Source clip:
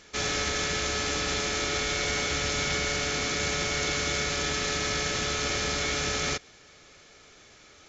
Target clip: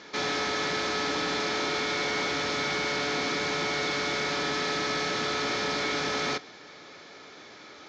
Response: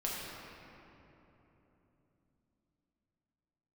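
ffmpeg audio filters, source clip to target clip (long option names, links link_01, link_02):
-filter_complex "[0:a]asoftclip=type=tanh:threshold=-32.5dB,highpass=180,equalizer=frequency=290:width_type=q:width=4:gain=4,equalizer=frequency=930:width_type=q:width=4:gain=5,equalizer=frequency=2800:width_type=q:width=4:gain=-6,lowpass=frequency=5000:width=0.5412,lowpass=frequency=5000:width=1.3066,asplit=2[link_01][link_02];[1:a]atrim=start_sample=2205,atrim=end_sample=3087[link_03];[link_02][link_03]afir=irnorm=-1:irlink=0,volume=-17dB[link_04];[link_01][link_04]amix=inputs=2:normalize=0,volume=6.5dB"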